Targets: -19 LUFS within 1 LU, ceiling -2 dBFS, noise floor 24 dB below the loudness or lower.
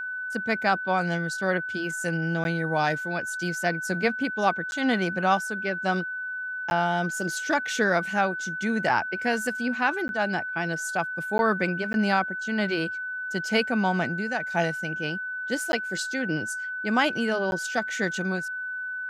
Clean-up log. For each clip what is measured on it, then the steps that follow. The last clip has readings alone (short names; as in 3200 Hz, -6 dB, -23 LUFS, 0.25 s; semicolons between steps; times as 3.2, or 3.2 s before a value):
dropouts 8; longest dropout 11 ms; steady tone 1500 Hz; tone level -30 dBFS; loudness -26.5 LUFS; peak -8.5 dBFS; loudness target -19.0 LUFS
-> interpolate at 2.44/4.71/6.7/10.08/11.38/11.93/15.72/17.51, 11 ms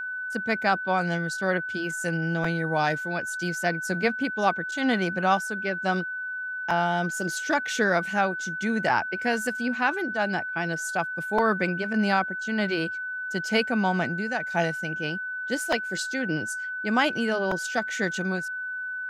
dropouts 0; steady tone 1500 Hz; tone level -30 dBFS
-> notch 1500 Hz, Q 30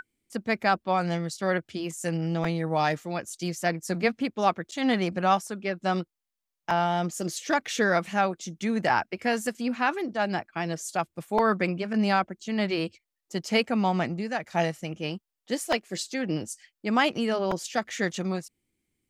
steady tone none; loudness -28.0 LUFS; peak -9.0 dBFS; loudness target -19.0 LUFS
-> gain +9 dB; limiter -2 dBFS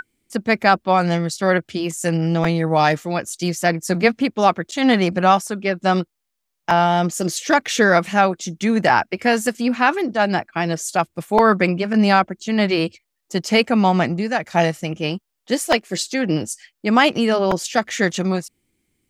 loudness -19.0 LUFS; peak -2.0 dBFS; noise floor -77 dBFS